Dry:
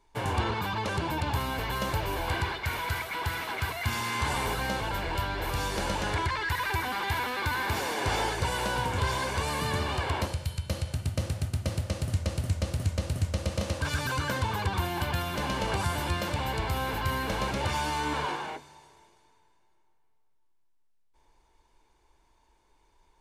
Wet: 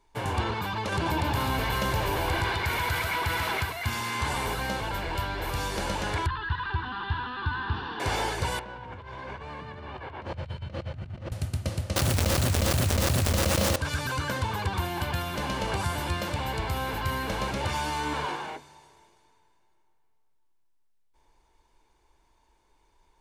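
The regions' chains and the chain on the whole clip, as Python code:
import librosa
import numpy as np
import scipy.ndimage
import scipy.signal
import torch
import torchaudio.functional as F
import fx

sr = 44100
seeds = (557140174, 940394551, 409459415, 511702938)

y = fx.chain(x, sr, fx.echo_single(ms=138, db=-5.5),
    fx.env_flatten(amount_pct=50), at=(0.92, 3.63))
y = fx.chain(y, sr, fx.lowpass(hz=3400.0, slope=24),
    fx.low_shelf(hz=120.0, db=5.5),
    fx.fixed_phaser(hz=2200.0, stages=6), at=(6.26, 8.0))
y = fx.chain(y, sr, fx.lowpass(hz=2400.0, slope=12),
    fx.over_compress(threshold_db=-39.0, ratio=-1.0), at=(8.59, 11.32))
y = fx.chain(y, sr, fx.low_shelf(hz=150.0, db=-2.0),
    fx.quant_dither(seeds[0], bits=6, dither='none'),
    fx.env_flatten(amount_pct=100), at=(11.96, 13.76))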